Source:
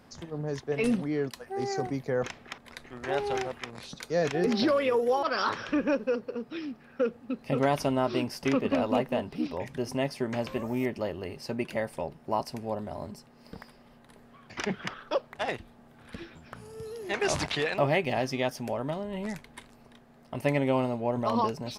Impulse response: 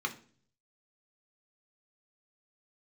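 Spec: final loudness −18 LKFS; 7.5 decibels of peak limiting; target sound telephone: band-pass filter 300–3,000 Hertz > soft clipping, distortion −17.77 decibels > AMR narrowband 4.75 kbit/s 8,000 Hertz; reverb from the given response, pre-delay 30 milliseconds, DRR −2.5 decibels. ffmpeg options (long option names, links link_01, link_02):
-filter_complex "[0:a]alimiter=limit=-20dB:level=0:latency=1,asplit=2[link_01][link_02];[1:a]atrim=start_sample=2205,adelay=30[link_03];[link_02][link_03]afir=irnorm=-1:irlink=0,volume=-2.5dB[link_04];[link_01][link_04]amix=inputs=2:normalize=0,highpass=300,lowpass=3000,asoftclip=threshold=-20.5dB,volume=16dB" -ar 8000 -c:a libopencore_amrnb -b:a 4750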